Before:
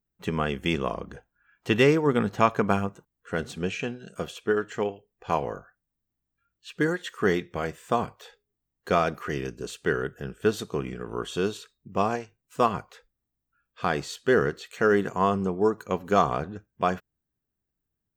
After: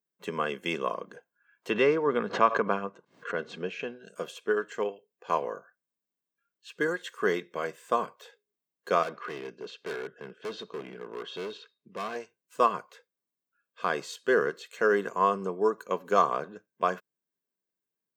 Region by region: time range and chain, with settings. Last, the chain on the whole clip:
1.70–4.04 s: distance through air 160 m + swell ahead of each attack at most 120 dB/s
9.03–12.16 s: low-pass 4.6 kHz 24 dB/octave + overload inside the chain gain 29 dB + tape noise reduction on one side only encoder only
whole clip: high-pass 200 Hz 24 dB/octave; dynamic bell 1.2 kHz, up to +4 dB, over -39 dBFS, Q 2.6; comb 1.9 ms, depth 42%; trim -4 dB

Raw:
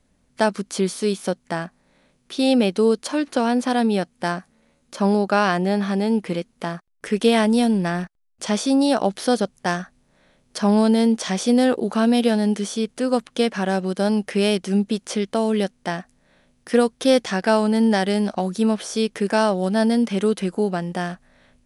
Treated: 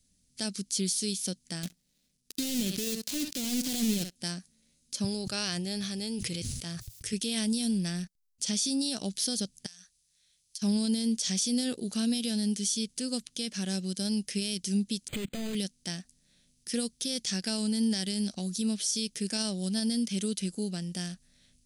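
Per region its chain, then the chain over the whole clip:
1.63–4.16 s: dead-time distortion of 0.25 ms + flutter echo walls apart 11.5 m, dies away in 0.22 s + waveshaping leveller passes 3
5.04–7.13 s: high-pass 43 Hz + resonant low shelf 150 Hz +9 dB, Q 3 + decay stretcher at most 39 dB/s
9.66–10.62 s: high-pass 72 Hz 6 dB/octave + amplifier tone stack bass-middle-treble 10-0-10 + compression 16:1, threshold -40 dBFS
15.08–15.55 s: overdrive pedal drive 36 dB, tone 2.6 kHz, clips at -10 dBFS + level held to a coarse grid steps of 21 dB + decimation joined by straight lines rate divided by 8×
whole clip: FFT filter 190 Hz 0 dB, 990 Hz -19 dB, 5 kHz +12 dB; peak limiter -11.5 dBFS; trim -7.5 dB

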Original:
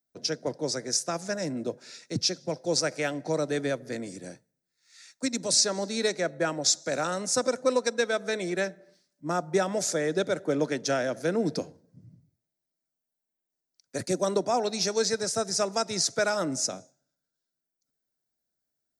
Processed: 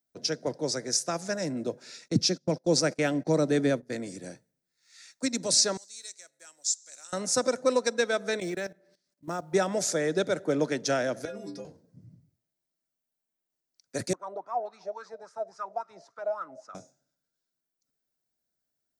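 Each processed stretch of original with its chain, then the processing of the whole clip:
2.08–3.90 s: peaking EQ 220 Hz +8 dB 1.6 oct + gate -37 dBFS, range -22 dB
5.77–7.13 s: block-companded coder 7-bit + band-pass filter 7.8 kHz, Q 2.7
8.40–9.53 s: level held to a coarse grid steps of 16 dB + short-mantissa float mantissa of 4-bit
11.25–11.65 s: inharmonic resonator 60 Hz, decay 0.8 s, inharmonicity 0.03 + three bands compressed up and down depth 100%
14.13–16.75 s: bass shelf 150 Hz +7.5 dB + waveshaping leveller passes 1 + wah-wah 3.6 Hz 600–1300 Hz, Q 9.4
whole clip: none

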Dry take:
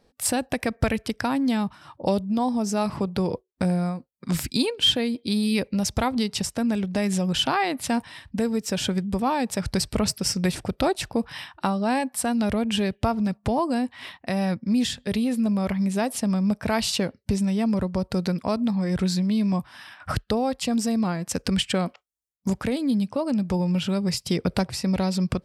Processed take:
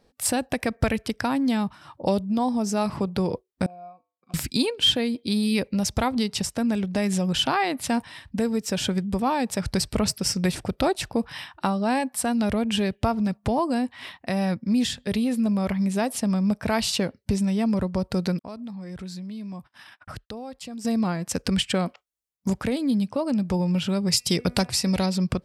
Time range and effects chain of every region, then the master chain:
3.66–4.34 s: vowel filter a + bass shelf 140 Hz +9.5 dB + feedback comb 100 Hz, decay 0.38 s, harmonics odd
18.39–20.85 s: gate -45 dBFS, range -39 dB + compression 2:1, threshold -44 dBFS + tape noise reduction on one side only decoder only
24.12–25.06 s: peaking EQ 8.4 kHz +8.5 dB 2.8 oct + de-hum 244.8 Hz, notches 11
whole clip: none

